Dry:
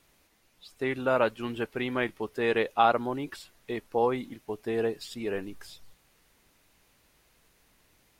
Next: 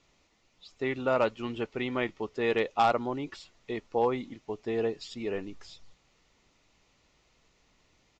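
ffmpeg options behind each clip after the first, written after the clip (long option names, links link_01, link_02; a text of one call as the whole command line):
ffmpeg -i in.wav -af "bandreject=frequency=1600:width=6.7,aresample=16000,volume=15.5dB,asoftclip=hard,volume=-15.5dB,aresample=44100,volume=-1dB" out.wav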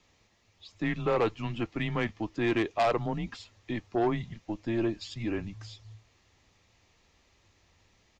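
ffmpeg -i in.wav -af "afreqshift=-110,aeval=exprs='0.237*sin(PI/2*1.78*val(0)/0.237)':channel_layout=same,volume=-7.5dB" out.wav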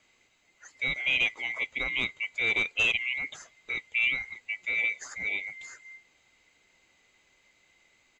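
ffmpeg -i in.wav -af "afftfilt=real='real(if(lt(b,920),b+92*(1-2*mod(floor(b/92),2)),b),0)':imag='imag(if(lt(b,920),b+92*(1-2*mod(floor(b/92),2)),b),0)':win_size=2048:overlap=0.75" out.wav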